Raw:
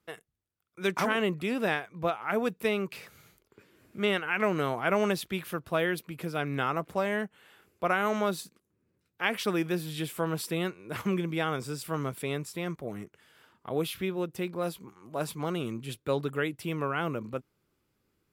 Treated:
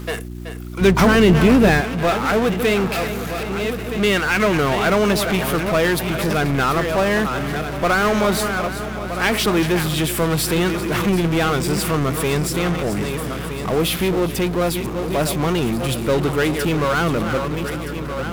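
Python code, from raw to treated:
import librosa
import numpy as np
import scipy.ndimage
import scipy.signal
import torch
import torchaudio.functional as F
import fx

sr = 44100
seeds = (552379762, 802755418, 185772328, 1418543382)

p1 = fx.reverse_delay_fb(x, sr, ms=635, feedback_pct=45, wet_db=-11.5)
p2 = p1 + fx.echo_feedback(p1, sr, ms=378, feedback_pct=54, wet_db=-19.5, dry=0)
p3 = fx.power_curve(p2, sr, exponent=0.5)
p4 = fx.dmg_buzz(p3, sr, base_hz=60.0, harmonics=6, level_db=-35.0, tilt_db=-4, odd_only=False)
p5 = fx.low_shelf(p4, sr, hz=430.0, db=9.0, at=(0.81, 1.81))
y = p5 * 10.0 ** (3.5 / 20.0)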